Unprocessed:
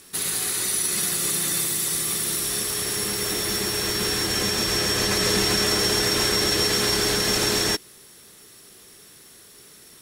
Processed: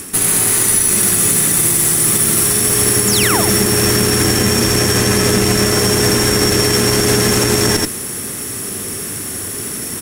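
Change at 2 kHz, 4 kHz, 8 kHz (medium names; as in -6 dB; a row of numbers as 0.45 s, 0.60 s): +8.0 dB, +5.0 dB, +11.5 dB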